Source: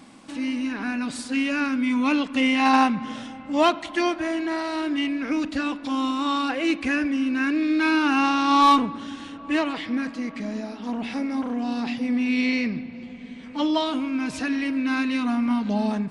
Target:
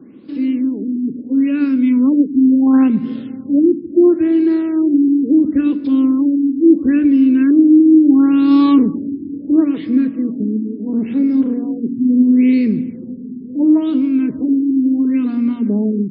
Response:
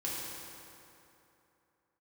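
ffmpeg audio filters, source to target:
-filter_complex "[0:a]highpass=96,lowshelf=frequency=550:width_type=q:width=3:gain=11.5,bandreject=frequency=60:width_type=h:width=6,bandreject=frequency=120:width_type=h:width=6,bandreject=frequency=180:width_type=h:width=6,bandreject=frequency=240:width_type=h:width=6,bandreject=frequency=300:width_type=h:width=6,acrossover=split=270|4300[link_01][link_02][link_03];[link_01]dynaudnorm=framelen=260:gausssize=21:maxgain=7dB[link_04];[link_04][link_02][link_03]amix=inputs=3:normalize=0,afftfilt=real='re*lt(b*sr/1024,420*pow(5400/420,0.5+0.5*sin(2*PI*0.73*pts/sr)))':imag='im*lt(b*sr/1024,420*pow(5400/420,0.5+0.5*sin(2*PI*0.73*pts/sr)))':win_size=1024:overlap=0.75,volume=-4.5dB"

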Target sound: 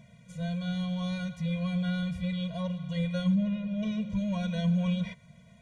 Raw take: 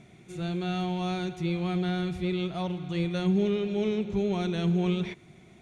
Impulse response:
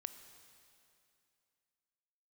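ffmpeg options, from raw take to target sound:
-filter_complex "[0:a]asettb=1/sr,asplit=3[link_01][link_02][link_03];[link_01]atrim=end=3.354[link_04];[link_02]atrim=start=3.35:end=3.83,asetpts=PTS-STARTPTS,afade=type=in:duration=0.004:curve=qsin,afade=type=out:start_time=0.476:duration=0.004:curve=qsin,lowpass=frequency=1600:poles=1[link_05];[link_03]atrim=start=3.826[link_06];[link_04][link_05]acrossfade=duration=0.004:curve1=hsin:curve2=qsin[link_07];[link_07][link_06]acrossfade=duration=0.004:curve1=qsin:curve2=hsin,afftfilt=real='re*eq(mod(floor(b*sr/1024/230),2),0)':imag='im*eq(mod(floor(b*sr/1024/230),2),0)':win_size=1024:overlap=0.75"

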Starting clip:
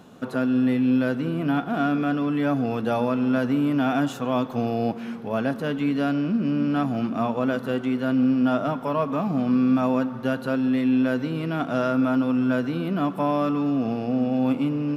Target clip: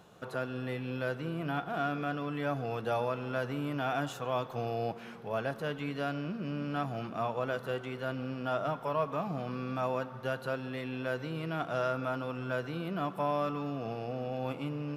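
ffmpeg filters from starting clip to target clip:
ffmpeg -i in.wav -af "equalizer=frequency=250:width_type=o:width=0.51:gain=-15,volume=-6dB" out.wav

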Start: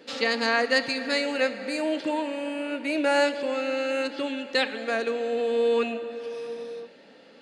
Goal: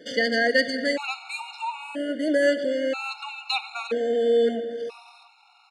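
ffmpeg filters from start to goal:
ffmpeg -i in.wav -af "atempo=1.3,acontrast=84,afftfilt=real='re*gt(sin(2*PI*0.51*pts/sr)*(1-2*mod(floor(b*sr/1024/720),2)),0)':imag='im*gt(sin(2*PI*0.51*pts/sr)*(1-2*mod(floor(b*sr/1024/720),2)),0)':win_size=1024:overlap=0.75,volume=-3.5dB" out.wav

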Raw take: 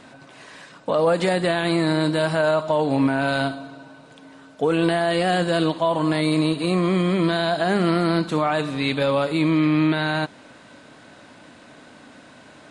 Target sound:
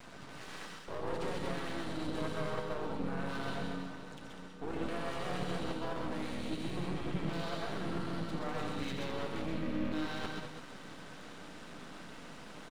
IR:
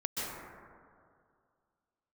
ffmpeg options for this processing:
-filter_complex "[0:a]areverse,acompressor=threshold=-31dB:ratio=10,areverse,aecho=1:1:87.46|198.3:0.316|0.398,asplit=3[link_01][link_02][link_03];[link_02]asetrate=29433,aresample=44100,atempo=1.49831,volume=-7dB[link_04];[link_03]asetrate=35002,aresample=44100,atempo=1.25992,volume=-5dB[link_05];[link_01][link_04][link_05]amix=inputs=3:normalize=0,aeval=exprs='max(val(0),0)':channel_layout=same[link_06];[1:a]atrim=start_sample=2205,atrim=end_sample=6174[link_07];[link_06][link_07]afir=irnorm=-1:irlink=0,volume=-1.5dB"

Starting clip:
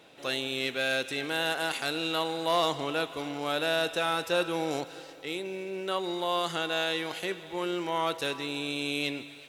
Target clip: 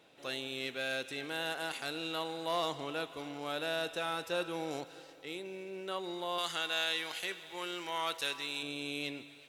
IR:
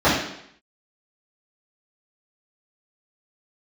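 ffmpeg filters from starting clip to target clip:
-filter_complex "[0:a]asettb=1/sr,asplit=3[link_01][link_02][link_03];[link_01]atrim=end=6.384[link_04];[link_02]atrim=start=6.38:end=8.63,asetpts=PTS-STARTPTS,afade=type=in:duration=0.004:curve=qsin,afade=type=out:start_time=2.246:duration=0.004:curve=qsin,tiltshelf=frequency=820:gain=-7[link_05];[link_03]atrim=start=8.626[link_06];[link_04][link_05]acrossfade=duration=0.004:curve1=hsin:curve2=qsin[link_07];[link_07][link_06]acrossfade=duration=0.004:curve1=qsin:curve2=hsin,volume=-7.5dB"

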